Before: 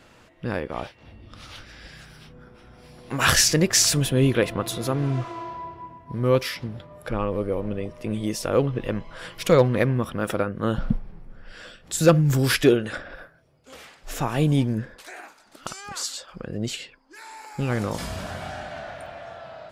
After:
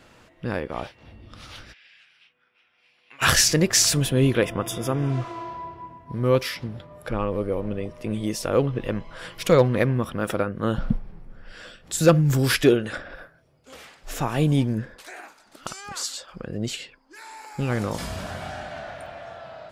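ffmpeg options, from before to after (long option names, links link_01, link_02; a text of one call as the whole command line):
ffmpeg -i in.wav -filter_complex "[0:a]asplit=3[link_01][link_02][link_03];[link_01]afade=type=out:start_time=1.72:duration=0.02[link_04];[link_02]bandpass=frequency=2600:width_type=q:width=3.3,afade=type=in:start_time=1.72:duration=0.02,afade=type=out:start_time=3.21:duration=0.02[link_05];[link_03]afade=type=in:start_time=3.21:duration=0.02[link_06];[link_04][link_05][link_06]amix=inputs=3:normalize=0,asettb=1/sr,asplit=3[link_07][link_08][link_09];[link_07]atrim=end=4.454[link_10];[link_08]atrim=start=4.45:end=5.1,asetpts=PTS-STARTPTS,afade=type=in:duration=0.004:curve=qsin,afade=type=out:start_time=0.646:duration=0.004:curve=qsin,asuperstop=centerf=4200:order=20:qfactor=4.8[link_11];[link_09]atrim=start=5.096[link_12];[link_10][link_11]acrossfade=duration=0.004:curve1=hsin:curve2=qsin[link_13];[link_13][link_12]acrossfade=duration=0.004:curve1=qsin:curve2=hsin" out.wav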